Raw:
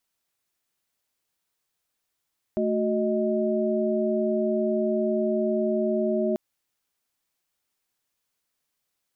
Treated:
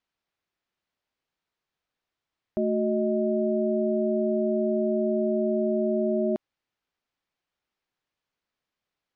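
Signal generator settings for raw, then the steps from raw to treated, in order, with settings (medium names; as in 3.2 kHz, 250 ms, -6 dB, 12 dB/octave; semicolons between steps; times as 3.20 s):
chord A3/F#4/D#5 sine, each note -26 dBFS 3.79 s
distance through air 180 m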